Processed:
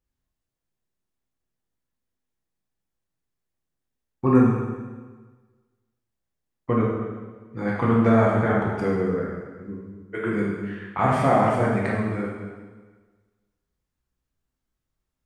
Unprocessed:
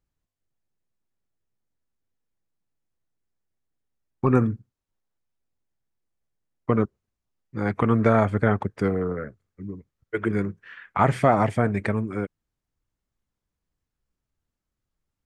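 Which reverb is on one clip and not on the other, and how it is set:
dense smooth reverb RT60 1.4 s, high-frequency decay 0.95×, DRR −4.5 dB
level −4.5 dB

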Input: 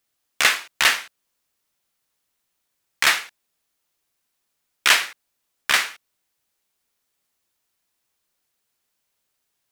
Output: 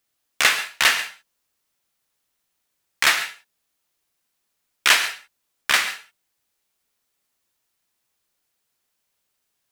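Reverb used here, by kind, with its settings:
reverb whose tail is shaped and stops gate 160 ms rising, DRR 10.5 dB

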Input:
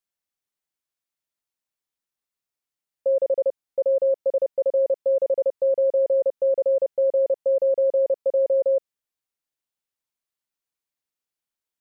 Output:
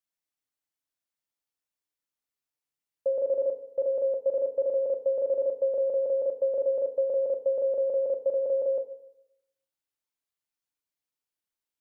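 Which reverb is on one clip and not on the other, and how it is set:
feedback delay network reverb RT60 0.82 s, low-frequency decay 1×, high-frequency decay 0.95×, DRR 6 dB
level −4 dB

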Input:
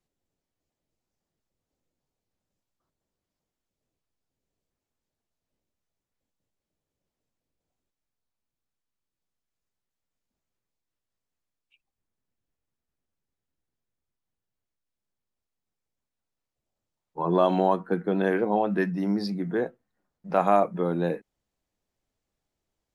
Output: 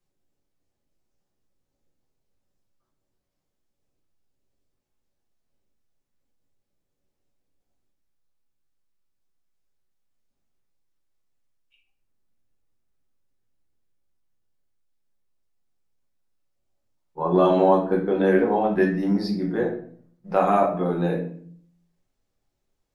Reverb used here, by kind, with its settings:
rectangular room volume 63 cubic metres, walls mixed, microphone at 0.9 metres
level −1.5 dB

